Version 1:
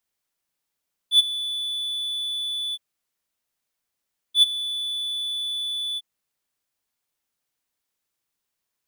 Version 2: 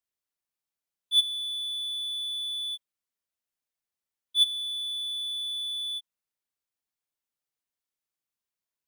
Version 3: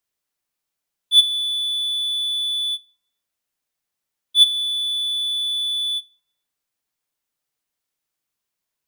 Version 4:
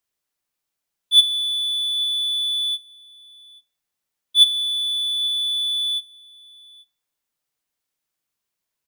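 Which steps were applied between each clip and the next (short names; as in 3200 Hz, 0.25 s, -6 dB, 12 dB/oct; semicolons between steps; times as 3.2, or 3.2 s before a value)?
spectral noise reduction 6 dB; gain -4.5 dB
shoebox room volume 2600 m³, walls furnished, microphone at 0.45 m; gain +8 dB
echo 0.836 s -23.5 dB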